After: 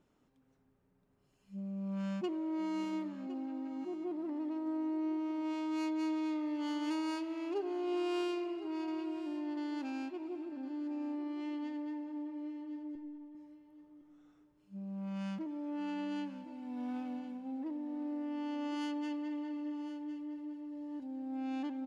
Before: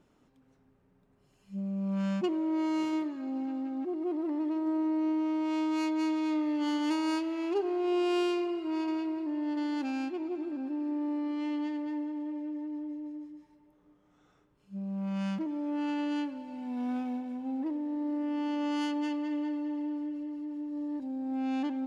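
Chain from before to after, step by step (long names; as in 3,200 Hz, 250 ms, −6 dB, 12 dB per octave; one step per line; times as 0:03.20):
0:12.95–0:13.35: linear-prediction vocoder at 8 kHz pitch kept
on a send: repeating echo 1,060 ms, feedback 18%, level −14 dB
on the sum: level −6.5 dB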